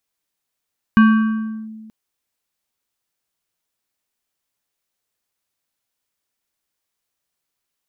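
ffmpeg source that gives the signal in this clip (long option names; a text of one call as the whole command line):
ffmpeg -f lavfi -i "aevalsrc='0.531*pow(10,-3*t/1.73)*sin(2*PI*219*t+0.57*clip(1-t/0.71,0,1)*sin(2*PI*6.16*219*t))':duration=0.93:sample_rate=44100" out.wav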